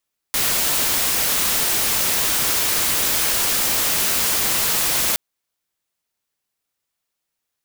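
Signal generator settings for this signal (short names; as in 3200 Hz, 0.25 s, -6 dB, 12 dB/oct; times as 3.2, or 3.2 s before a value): noise white, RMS -19.5 dBFS 4.82 s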